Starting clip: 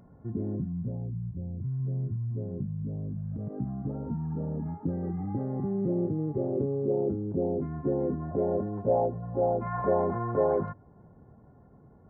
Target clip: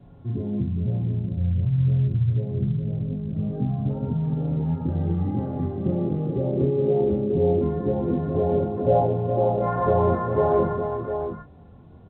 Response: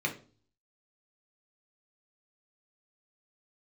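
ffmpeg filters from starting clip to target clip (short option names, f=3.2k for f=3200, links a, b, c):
-filter_complex "[0:a]adynamicequalizer=threshold=0.00251:dfrequency=1200:dqfactor=4.4:tfrequency=1200:tqfactor=4.4:attack=5:release=100:ratio=0.375:range=2:mode=boostabove:tftype=bell,acrossover=split=100|990[a][b][c];[a]acontrast=69[d];[d][b][c]amix=inputs=3:normalize=0,flanger=delay=7.1:depth=7.8:regen=-31:speed=0.23:shape=sinusoidal,asplit=2[e][f];[f]adelay=24,volume=-5.5dB[g];[e][g]amix=inputs=2:normalize=0,asplit=2[h][i];[i]aecho=0:1:44|68|74|149|407|700:0.335|0.119|0.133|0.126|0.376|0.398[j];[h][j]amix=inputs=2:normalize=0,volume=6.5dB" -ar 8000 -c:a pcm_alaw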